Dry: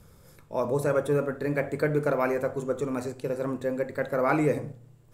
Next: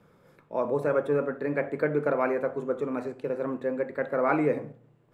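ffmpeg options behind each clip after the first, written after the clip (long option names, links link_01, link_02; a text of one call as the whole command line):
ffmpeg -i in.wav -filter_complex "[0:a]acrossover=split=150 3100:gain=0.0891 1 0.126[link_01][link_02][link_03];[link_01][link_02][link_03]amix=inputs=3:normalize=0" out.wav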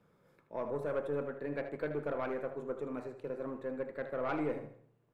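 ffmpeg -i in.wav -filter_complex "[0:a]aeval=exprs='(tanh(7.94*val(0)+0.3)-tanh(0.3))/7.94':channel_layout=same,asplit=2[link_01][link_02];[link_02]aecho=0:1:77|154|231|308:0.282|0.113|0.0451|0.018[link_03];[link_01][link_03]amix=inputs=2:normalize=0,volume=-8.5dB" out.wav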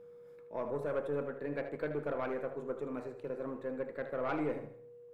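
ffmpeg -i in.wav -af "aeval=exprs='val(0)+0.00282*sin(2*PI*480*n/s)':channel_layout=same" out.wav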